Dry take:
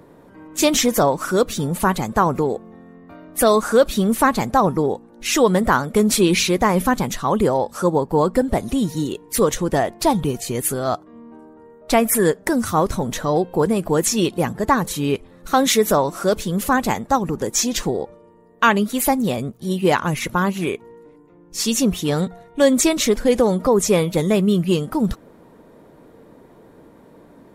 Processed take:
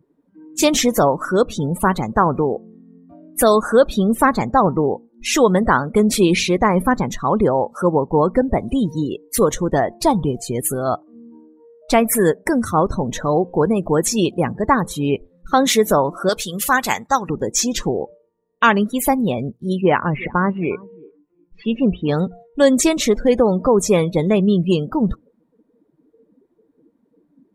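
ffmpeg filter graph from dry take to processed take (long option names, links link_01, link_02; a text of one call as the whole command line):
ffmpeg -i in.wav -filter_complex "[0:a]asettb=1/sr,asplit=3[link_01][link_02][link_03];[link_01]atrim=end=16.294[link_04];[link_02]atrim=start=16.29:end=17.3,asetpts=PTS-STARTPTS,afade=type=in:duration=0.004:curve=qsin,afade=type=out:start_time=1.006:duration=0.004:curve=qsin,tiltshelf=frequency=910:gain=-8.5,bandreject=frequency=160.9:width_type=h:width=4,bandreject=frequency=321.8:width_type=h:width=4,bandreject=frequency=482.7:width_type=h:width=4[link_05];[link_03]atrim=start=17.296[link_06];[link_04][link_05]acrossfade=duration=0.004:curve1=hsin:curve2=qsin[link_07];[link_07][link_06]acrossfade=duration=0.004:curve1=qsin:curve2=hsin,asettb=1/sr,asplit=3[link_08][link_09][link_10];[link_08]atrim=end=19.814[link_11];[link_09]atrim=start=19.81:end=22.09,asetpts=PTS-STARTPTS,afade=type=in:duration=0.004:curve=qsin,afade=type=out:start_time=2.276:duration=0.004:curve=qsin,lowpass=frequency=2800:width=0.5412,lowpass=frequency=2800:width=1.3066,bandreject=frequency=60:width_type=h:width=6,bandreject=frequency=120:width_type=h:width=6,aecho=1:1:357|714:0.0891|0.0143,atrim=end_sample=100548[link_12];[link_10]atrim=start=22.086[link_13];[link_11][link_12]acrossfade=duration=0.004:curve1=hsin:curve2=qsin[link_14];[link_14][link_13]acrossfade=duration=0.004:curve1=qsin:curve2=hsin,afftdn=noise_reduction=26:noise_floor=-32,adynamicequalizer=threshold=0.0141:dfrequency=3700:dqfactor=0.7:tfrequency=3700:tqfactor=0.7:attack=5:release=100:ratio=0.375:range=2.5:mode=cutabove:tftype=highshelf,volume=1.5dB" out.wav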